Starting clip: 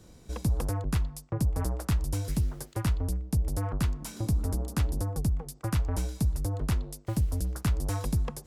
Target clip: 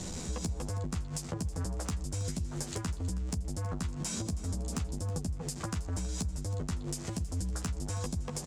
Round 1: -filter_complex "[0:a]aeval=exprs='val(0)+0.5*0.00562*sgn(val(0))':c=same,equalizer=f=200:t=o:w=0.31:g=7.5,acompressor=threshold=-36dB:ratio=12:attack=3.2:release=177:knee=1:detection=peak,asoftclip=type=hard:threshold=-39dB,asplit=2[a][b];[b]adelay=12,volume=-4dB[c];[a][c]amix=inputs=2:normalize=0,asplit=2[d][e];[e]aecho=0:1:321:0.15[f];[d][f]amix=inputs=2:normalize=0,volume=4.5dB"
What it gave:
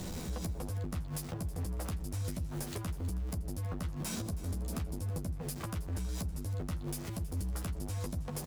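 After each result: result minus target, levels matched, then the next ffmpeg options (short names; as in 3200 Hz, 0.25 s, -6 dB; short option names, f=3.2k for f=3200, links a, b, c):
hard clip: distortion +15 dB; 8000 Hz band -3.5 dB
-filter_complex "[0:a]aeval=exprs='val(0)+0.5*0.00562*sgn(val(0))':c=same,equalizer=f=200:t=o:w=0.31:g=7.5,acompressor=threshold=-36dB:ratio=12:attack=3.2:release=177:knee=1:detection=peak,asoftclip=type=hard:threshold=-31.5dB,asplit=2[a][b];[b]adelay=12,volume=-4dB[c];[a][c]amix=inputs=2:normalize=0,asplit=2[d][e];[e]aecho=0:1:321:0.15[f];[d][f]amix=inputs=2:normalize=0,volume=4.5dB"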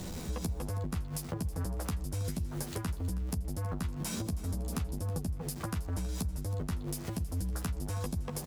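8000 Hz band -3.5 dB
-filter_complex "[0:a]aeval=exprs='val(0)+0.5*0.00562*sgn(val(0))':c=same,lowpass=f=7.4k:t=q:w=2.7,equalizer=f=200:t=o:w=0.31:g=7.5,acompressor=threshold=-36dB:ratio=12:attack=3.2:release=177:knee=1:detection=peak,asoftclip=type=hard:threshold=-31.5dB,asplit=2[a][b];[b]adelay=12,volume=-4dB[c];[a][c]amix=inputs=2:normalize=0,asplit=2[d][e];[e]aecho=0:1:321:0.15[f];[d][f]amix=inputs=2:normalize=0,volume=4.5dB"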